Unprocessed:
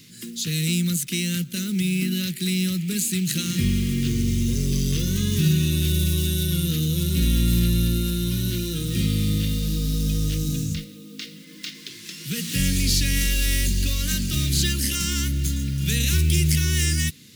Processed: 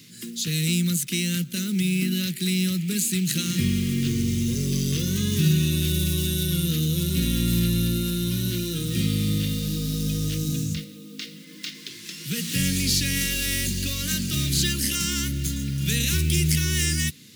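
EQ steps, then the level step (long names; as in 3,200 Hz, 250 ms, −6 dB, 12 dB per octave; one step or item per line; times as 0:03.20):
high-pass filter 91 Hz 12 dB per octave
0.0 dB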